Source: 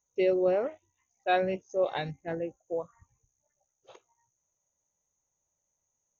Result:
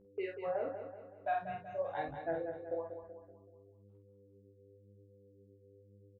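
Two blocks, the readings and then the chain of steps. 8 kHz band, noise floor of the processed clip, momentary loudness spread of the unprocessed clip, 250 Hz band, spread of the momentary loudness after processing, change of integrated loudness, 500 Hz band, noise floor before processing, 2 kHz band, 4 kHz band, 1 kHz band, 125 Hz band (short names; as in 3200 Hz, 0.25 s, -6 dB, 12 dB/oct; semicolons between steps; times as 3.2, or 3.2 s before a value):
n/a, -63 dBFS, 11 LU, -13.0 dB, 12 LU, -9.5 dB, -9.5 dB, -82 dBFS, -8.5 dB, under -15 dB, -5.5 dB, -9.5 dB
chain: block floating point 5-bit; spectral noise reduction 23 dB; gate -52 dBFS, range -12 dB; LPF 1600 Hz 12 dB/oct; reverb removal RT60 1.2 s; bell 190 Hz -14.5 dB 0.35 oct; compressor 6:1, threshold -39 dBFS, peak gain reduction 15 dB; buzz 100 Hz, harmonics 5, -67 dBFS 0 dB/oct; chorus 0.96 Hz, delay 15.5 ms, depth 7 ms; doubler 48 ms -5 dB; feedback echo 0.189 s, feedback 47%, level -8.5 dB; gain +7 dB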